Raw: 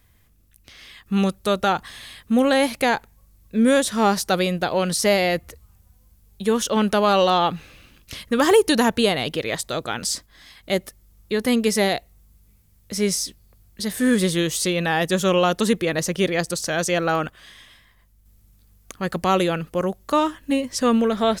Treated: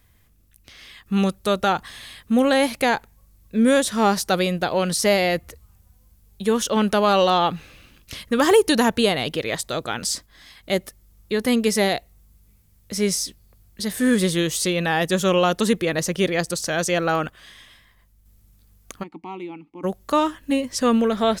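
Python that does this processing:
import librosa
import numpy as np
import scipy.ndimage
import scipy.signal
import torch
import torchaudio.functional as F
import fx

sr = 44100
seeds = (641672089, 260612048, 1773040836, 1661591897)

y = fx.vowel_filter(x, sr, vowel='u', at=(19.02, 19.83), fade=0.02)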